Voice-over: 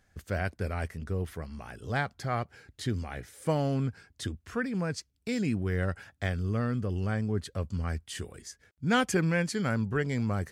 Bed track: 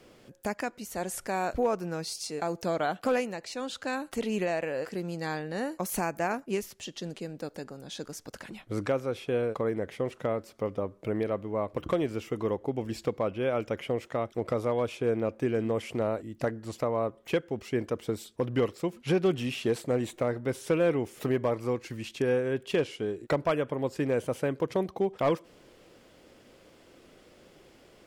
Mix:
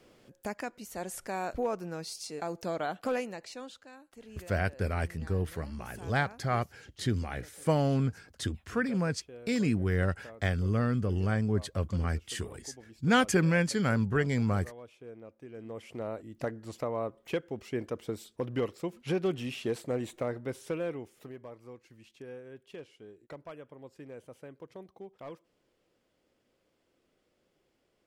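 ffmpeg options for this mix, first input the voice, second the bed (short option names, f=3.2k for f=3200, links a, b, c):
-filter_complex "[0:a]adelay=4200,volume=1.5dB[a];[1:a]volume=10.5dB,afade=t=out:st=3.44:d=0.42:silence=0.177828,afade=t=in:st=15.48:d=0.95:silence=0.177828,afade=t=out:st=20.31:d=1.01:silence=0.199526[b];[a][b]amix=inputs=2:normalize=0"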